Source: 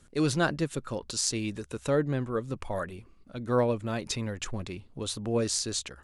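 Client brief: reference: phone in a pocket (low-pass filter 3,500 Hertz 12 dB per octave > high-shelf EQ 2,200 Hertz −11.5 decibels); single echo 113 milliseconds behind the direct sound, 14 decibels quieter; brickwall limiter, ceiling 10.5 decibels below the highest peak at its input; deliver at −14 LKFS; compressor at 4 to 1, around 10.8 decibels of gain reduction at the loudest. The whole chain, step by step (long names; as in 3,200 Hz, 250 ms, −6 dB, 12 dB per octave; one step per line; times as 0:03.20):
downward compressor 4 to 1, threshold −34 dBFS
brickwall limiter −29 dBFS
low-pass filter 3,500 Hz 12 dB per octave
high-shelf EQ 2,200 Hz −11.5 dB
single-tap delay 113 ms −14 dB
level +27 dB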